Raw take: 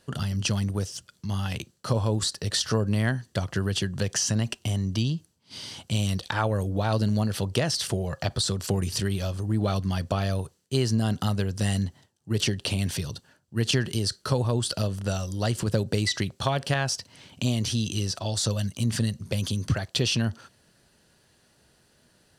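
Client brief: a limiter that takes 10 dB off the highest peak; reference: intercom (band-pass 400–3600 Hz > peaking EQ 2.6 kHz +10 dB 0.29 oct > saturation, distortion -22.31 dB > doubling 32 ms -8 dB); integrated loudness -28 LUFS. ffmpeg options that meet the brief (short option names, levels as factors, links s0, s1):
-filter_complex "[0:a]alimiter=limit=0.133:level=0:latency=1,highpass=400,lowpass=3600,equalizer=f=2600:t=o:w=0.29:g=10,asoftclip=threshold=0.1,asplit=2[s0][s1];[s1]adelay=32,volume=0.398[s2];[s0][s2]amix=inputs=2:normalize=0,volume=2.11"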